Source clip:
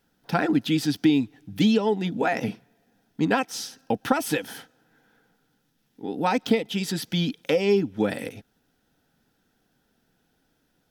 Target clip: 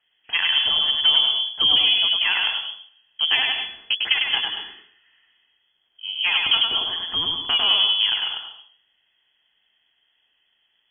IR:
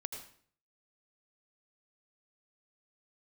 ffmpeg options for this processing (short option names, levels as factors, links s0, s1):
-filter_complex "[0:a]aeval=exprs='0.473*(cos(1*acos(clip(val(0)/0.473,-1,1)))-cos(1*PI/2))+0.0422*(cos(6*acos(clip(val(0)/0.473,-1,1)))-cos(6*PI/2))+0.00335*(cos(8*acos(clip(val(0)/0.473,-1,1)))-cos(8*PI/2))':c=same,asplit=2[s0][s1];[1:a]atrim=start_sample=2205,adelay=101[s2];[s1][s2]afir=irnorm=-1:irlink=0,volume=1[s3];[s0][s3]amix=inputs=2:normalize=0,lowpass=f=2900:t=q:w=0.5098,lowpass=f=2900:t=q:w=0.6013,lowpass=f=2900:t=q:w=0.9,lowpass=f=2900:t=q:w=2.563,afreqshift=-3400"